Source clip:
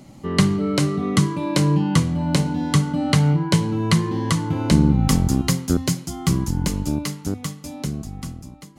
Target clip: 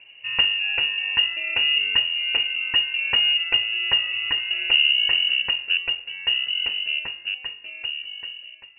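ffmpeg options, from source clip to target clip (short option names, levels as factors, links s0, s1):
-af "lowpass=f=2600:t=q:w=0.5098,lowpass=f=2600:t=q:w=0.6013,lowpass=f=2600:t=q:w=0.9,lowpass=f=2600:t=q:w=2.563,afreqshift=-3000,equalizer=f=100:t=o:w=0.67:g=7,equalizer=f=400:t=o:w=0.67:g=7,equalizer=f=1000:t=o:w=0.67:g=-6,volume=0.708"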